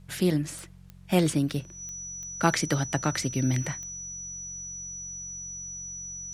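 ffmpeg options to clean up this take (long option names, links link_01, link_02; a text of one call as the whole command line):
ffmpeg -i in.wav -af "adeclick=threshold=4,bandreject=frequency=45.4:width_type=h:width=4,bandreject=frequency=90.8:width_type=h:width=4,bandreject=frequency=136.2:width_type=h:width=4,bandreject=frequency=181.6:width_type=h:width=4,bandreject=frequency=5900:width=30,agate=range=-21dB:threshold=-37dB" out.wav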